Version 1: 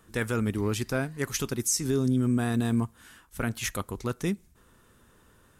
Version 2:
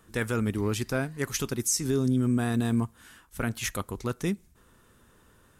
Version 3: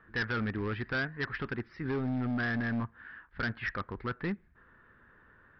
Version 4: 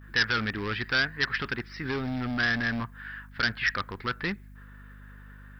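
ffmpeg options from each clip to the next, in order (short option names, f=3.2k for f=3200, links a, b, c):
-af anull
-af "lowpass=f=1.7k:t=q:w=4.4,aresample=11025,asoftclip=type=hard:threshold=-23.5dB,aresample=44100,volume=-4.5dB"
-af "agate=range=-33dB:threshold=-58dB:ratio=3:detection=peak,aeval=exprs='val(0)+0.00447*(sin(2*PI*50*n/s)+sin(2*PI*2*50*n/s)/2+sin(2*PI*3*50*n/s)/3+sin(2*PI*4*50*n/s)/4+sin(2*PI*5*50*n/s)/5)':c=same,crystalizer=i=9:c=0"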